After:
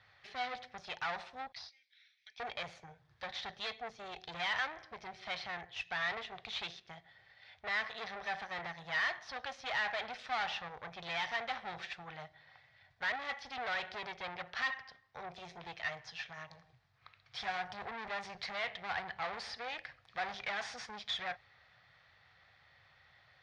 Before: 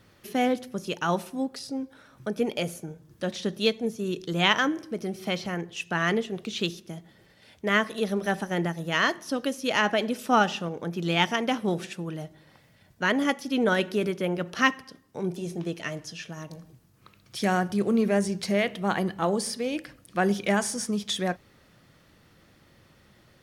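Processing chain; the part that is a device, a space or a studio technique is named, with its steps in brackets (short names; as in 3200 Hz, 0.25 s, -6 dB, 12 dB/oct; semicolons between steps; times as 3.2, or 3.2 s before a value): 1.52–2.4 elliptic band-pass 2100–6200 Hz, stop band 40 dB; scooped metal amplifier (tube stage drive 33 dB, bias 0.75; speaker cabinet 88–3800 Hz, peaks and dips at 190 Hz -9 dB, 750 Hz +9 dB, 1900 Hz +4 dB, 2900 Hz -7 dB; passive tone stack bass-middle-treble 10-0-10); gain +7 dB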